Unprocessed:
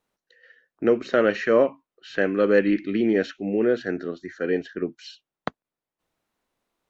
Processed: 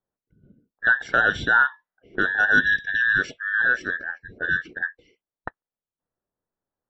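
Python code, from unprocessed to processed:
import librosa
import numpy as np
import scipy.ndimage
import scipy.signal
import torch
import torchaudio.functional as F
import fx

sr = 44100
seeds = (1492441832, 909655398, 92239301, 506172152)

y = fx.band_invert(x, sr, width_hz=2000)
y = fx.env_lowpass(y, sr, base_hz=500.0, full_db=-18.0)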